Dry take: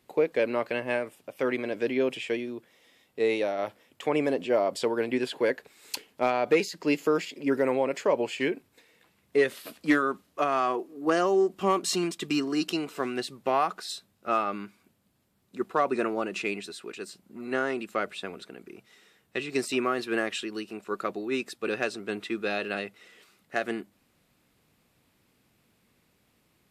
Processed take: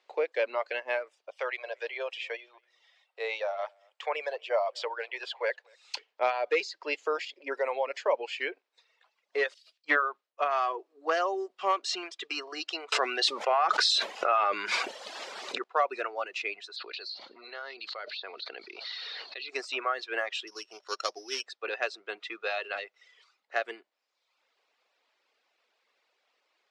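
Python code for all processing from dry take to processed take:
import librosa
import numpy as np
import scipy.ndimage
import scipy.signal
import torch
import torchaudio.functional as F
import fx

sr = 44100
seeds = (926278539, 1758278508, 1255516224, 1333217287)

y = fx.chain(x, sr, fx.highpass(hz=480.0, slope=24),
    fx.echo_single(ms=235, db=-20.0),
    fx.resample_bad(factor=2, down='none', up='hold'), at=(1.32, 5.95))
y = fx.chain(y, sr, fx.env_lowpass_down(base_hz=2600.0, full_db=-19.0),
    fx.band_widen(depth_pct=100), at=(9.54, 10.51))
y = fx.chain(y, sr, fx.high_shelf(hz=9700.0, db=5.5),
    fx.env_flatten(amount_pct=100), at=(12.92, 15.64))
y = fx.chain(y, sr, fx.ladder_lowpass(hz=4500.0, resonance_pct=85),
    fx.env_flatten(amount_pct=100), at=(16.76, 19.49))
y = fx.chain(y, sr, fx.sample_sort(block=8),
    fx.high_shelf(hz=5800.0, db=10.0), at=(20.47, 21.46))
y = scipy.signal.sosfilt(scipy.signal.butter(4, 510.0, 'highpass', fs=sr, output='sos'), y)
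y = fx.dereverb_blind(y, sr, rt60_s=0.85)
y = scipy.signal.sosfilt(scipy.signal.butter(4, 5700.0, 'lowpass', fs=sr, output='sos'), y)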